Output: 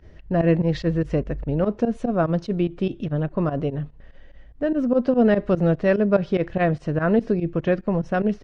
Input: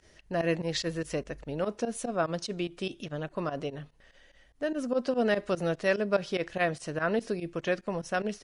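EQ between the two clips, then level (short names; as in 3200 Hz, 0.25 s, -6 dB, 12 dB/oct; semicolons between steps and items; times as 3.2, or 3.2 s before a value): tape spacing loss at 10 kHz 30 dB; low shelf 240 Hz +11.5 dB; +7.0 dB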